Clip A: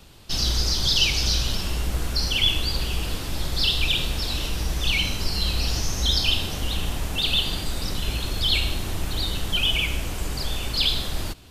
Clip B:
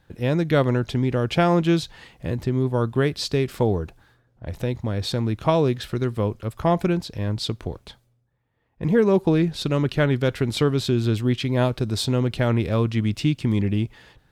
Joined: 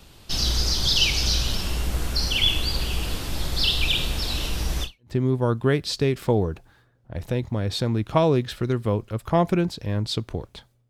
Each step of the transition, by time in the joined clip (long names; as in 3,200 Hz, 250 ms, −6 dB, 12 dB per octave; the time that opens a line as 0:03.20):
clip A
0:04.98: continue with clip B from 0:02.30, crossfade 0.30 s exponential